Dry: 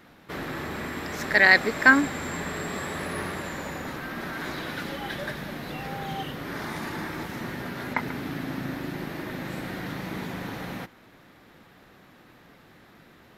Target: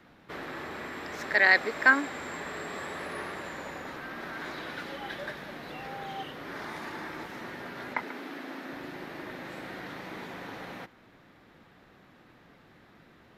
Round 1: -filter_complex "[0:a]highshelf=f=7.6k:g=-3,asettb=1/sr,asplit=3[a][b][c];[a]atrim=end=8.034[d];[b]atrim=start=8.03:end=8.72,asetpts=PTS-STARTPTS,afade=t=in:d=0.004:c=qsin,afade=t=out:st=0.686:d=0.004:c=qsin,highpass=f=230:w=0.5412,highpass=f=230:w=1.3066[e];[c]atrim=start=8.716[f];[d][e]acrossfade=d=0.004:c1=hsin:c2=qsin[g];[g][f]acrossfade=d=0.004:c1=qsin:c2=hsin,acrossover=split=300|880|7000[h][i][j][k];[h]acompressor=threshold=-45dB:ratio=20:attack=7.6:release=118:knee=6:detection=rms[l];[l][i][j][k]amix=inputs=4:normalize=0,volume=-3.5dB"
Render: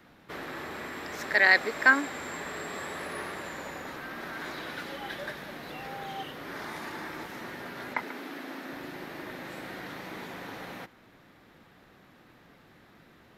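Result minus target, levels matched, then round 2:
8000 Hz band +3.5 dB
-filter_complex "[0:a]highshelf=f=7.6k:g=-11,asettb=1/sr,asplit=3[a][b][c];[a]atrim=end=8.034[d];[b]atrim=start=8.03:end=8.72,asetpts=PTS-STARTPTS,afade=t=in:d=0.004:c=qsin,afade=t=out:st=0.686:d=0.004:c=qsin,highpass=f=230:w=0.5412,highpass=f=230:w=1.3066[e];[c]atrim=start=8.716[f];[d][e]acrossfade=d=0.004:c1=hsin:c2=qsin[g];[g][f]acrossfade=d=0.004:c1=qsin:c2=hsin,acrossover=split=300|880|7000[h][i][j][k];[h]acompressor=threshold=-45dB:ratio=20:attack=7.6:release=118:knee=6:detection=rms[l];[l][i][j][k]amix=inputs=4:normalize=0,volume=-3.5dB"

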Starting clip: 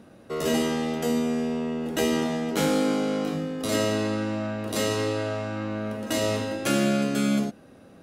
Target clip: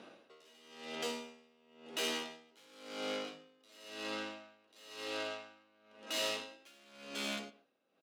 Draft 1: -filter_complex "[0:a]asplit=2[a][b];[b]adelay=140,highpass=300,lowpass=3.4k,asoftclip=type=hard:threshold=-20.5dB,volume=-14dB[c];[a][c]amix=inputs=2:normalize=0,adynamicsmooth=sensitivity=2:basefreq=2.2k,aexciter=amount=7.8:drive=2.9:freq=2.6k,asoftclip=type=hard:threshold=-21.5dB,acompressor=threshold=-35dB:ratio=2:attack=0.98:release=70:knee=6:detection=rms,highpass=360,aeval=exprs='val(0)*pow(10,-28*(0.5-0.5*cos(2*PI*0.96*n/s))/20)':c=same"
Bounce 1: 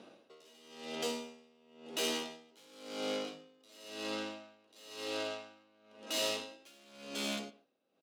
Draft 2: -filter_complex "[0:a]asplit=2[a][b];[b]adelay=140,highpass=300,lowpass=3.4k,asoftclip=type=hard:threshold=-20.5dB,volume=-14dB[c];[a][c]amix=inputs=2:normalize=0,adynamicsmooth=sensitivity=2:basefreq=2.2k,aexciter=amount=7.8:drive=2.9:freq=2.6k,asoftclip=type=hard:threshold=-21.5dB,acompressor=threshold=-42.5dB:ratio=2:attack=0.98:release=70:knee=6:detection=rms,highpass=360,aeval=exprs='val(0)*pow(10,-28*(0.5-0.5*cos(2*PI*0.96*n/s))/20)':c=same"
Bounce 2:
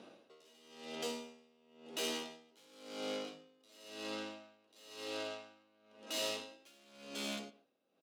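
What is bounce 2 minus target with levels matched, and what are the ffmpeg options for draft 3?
2000 Hz band -2.5 dB
-filter_complex "[0:a]asplit=2[a][b];[b]adelay=140,highpass=300,lowpass=3.4k,asoftclip=type=hard:threshold=-20.5dB,volume=-14dB[c];[a][c]amix=inputs=2:normalize=0,adynamicsmooth=sensitivity=2:basefreq=2.2k,aexciter=amount=7.8:drive=2.9:freq=2.6k,asoftclip=type=hard:threshold=-21.5dB,acompressor=threshold=-42.5dB:ratio=2:attack=0.98:release=70:knee=6:detection=rms,highpass=360,equalizer=f=1.7k:t=o:w=1.6:g=6,aeval=exprs='val(0)*pow(10,-28*(0.5-0.5*cos(2*PI*0.96*n/s))/20)':c=same"

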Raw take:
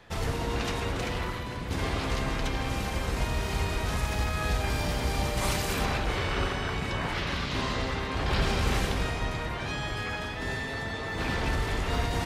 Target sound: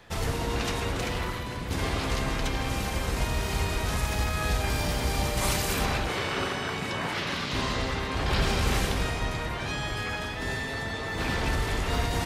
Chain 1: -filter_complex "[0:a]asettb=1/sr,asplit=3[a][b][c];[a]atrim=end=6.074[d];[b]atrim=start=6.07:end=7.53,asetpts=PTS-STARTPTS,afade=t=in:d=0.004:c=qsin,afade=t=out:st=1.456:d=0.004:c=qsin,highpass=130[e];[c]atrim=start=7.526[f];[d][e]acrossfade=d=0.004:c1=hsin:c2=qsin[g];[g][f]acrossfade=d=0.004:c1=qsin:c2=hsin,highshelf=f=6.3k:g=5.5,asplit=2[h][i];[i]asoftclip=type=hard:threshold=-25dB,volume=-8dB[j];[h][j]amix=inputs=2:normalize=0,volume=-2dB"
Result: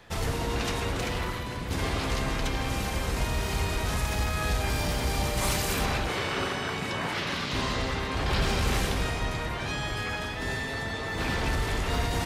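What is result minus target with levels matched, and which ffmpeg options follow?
hard clip: distortion +21 dB
-filter_complex "[0:a]asettb=1/sr,asplit=3[a][b][c];[a]atrim=end=6.074[d];[b]atrim=start=6.07:end=7.53,asetpts=PTS-STARTPTS,afade=t=in:d=0.004:c=qsin,afade=t=out:st=1.456:d=0.004:c=qsin,highpass=130[e];[c]atrim=start=7.526[f];[d][e]acrossfade=d=0.004:c1=hsin:c2=qsin[g];[g][f]acrossfade=d=0.004:c1=qsin:c2=hsin,highshelf=f=6.3k:g=5.5,asplit=2[h][i];[i]asoftclip=type=hard:threshold=-17.5dB,volume=-8dB[j];[h][j]amix=inputs=2:normalize=0,volume=-2dB"

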